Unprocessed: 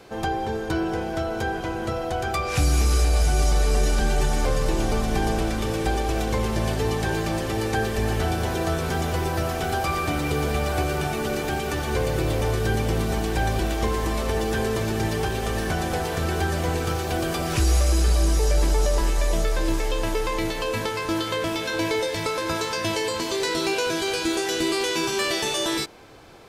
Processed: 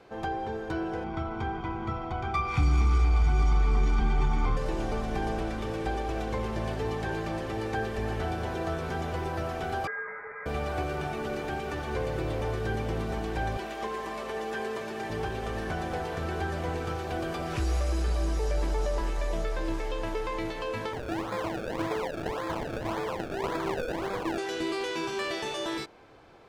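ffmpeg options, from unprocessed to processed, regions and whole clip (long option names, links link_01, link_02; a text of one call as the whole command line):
ffmpeg -i in.wav -filter_complex "[0:a]asettb=1/sr,asplit=3[link_01][link_02][link_03];[link_01]atrim=end=1.044[link_04];[link_02]atrim=start=1.04:end=4.57,asetpts=PTS-STARTPTS,afade=type=in:duration=0.004:curve=qsin,afade=type=out:start_time=3.526:duration=0.004:curve=qsin,aecho=1:1:0.9:0.94,atrim=end_sample=155673,adynamicsmooth=sensitivity=2:basefreq=3400[link_05];[link_03]atrim=start=4.566[link_06];[link_04][link_05]acrossfade=duration=0.004:curve1=hsin:curve2=qsin[link_07];[link_07][link_06]acrossfade=duration=0.004:curve1=qsin:curve2=hsin,asettb=1/sr,asplit=3[link_08][link_09][link_10];[link_08]atrim=end=9.874[link_11];[link_09]atrim=start=9.87:end=10.46,asetpts=PTS-STARTPTS,afade=type=in:duration=0.004:curve=qsin,afade=type=out:start_time=0.586:duration=0.004:curve=qsin,highpass=frequency=880:width=0.5412,highpass=frequency=880:width=1.3066,lowpass=frequency=2400:width_type=q:width=0.5098,lowpass=frequency=2400:width_type=q:width=0.6013,lowpass=frequency=2400:width_type=q:width=0.9,lowpass=frequency=2400:width_type=q:width=2.563,afreqshift=-2800[link_12];[link_10]atrim=start=10.456[link_13];[link_11][link_12]acrossfade=duration=0.004:curve1=hsin:curve2=qsin[link_14];[link_14][link_13]acrossfade=duration=0.004:curve1=qsin:curve2=hsin,asettb=1/sr,asplit=3[link_15][link_16][link_17];[link_15]atrim=end=13.574[link_18];[link_16]atrim=start=13.57:end=15.1,asetpts=PTS-STARTPTS,afade=type=in:duration=0.004:curve=qsin,afade=type=out:start_time=1.526:duration=0.004:curve=qsin,highpass=frequency=470:poles=1,aecho=1:1:5:0.42,atrim=end_sample=67473[link_19];[link_17]atrim=start=15.096[link_20];[link_18][link_19]acrossfade=duration=0.004:curve1=hsin:curve2=qsin[link_21];[link_21][link_20]acrossfade=duration=0.004:curve1=qsin:curve2=hsin,asettb=1/sr,asplit=3[link_22][link_23][link_24];[link_22]atrim=end=20.934[link_25];[link_23]atrim=start=20.93:end=24.38,asetpts=PTS-STARTPTS,afade=type=in:duration=0.004:curve=qsin,afade=type=out:start_time=3.446:duration=0.004:curve=qsin,acrusher=samples=30:mix=1:aa=0.000001:lfo=1:lforange=30:lforate=1.8,equalizer=frequency=990:width_type=o:width=0.36:gain=2.5[link_26];[link_24]atrim=start=24.376[link_27];[link_25][link_26]acrossfade=duration=0.004:curve1=hsin:curve2=qsin[link_28];[link_28][link_27]acrossfade=duration=0.004:curve1=qsin:curve2=hsin,lowpass=frequency=1700:poles=1,lowshelf=frequency=450:gain=-5,volume=-3.5dB" out.wav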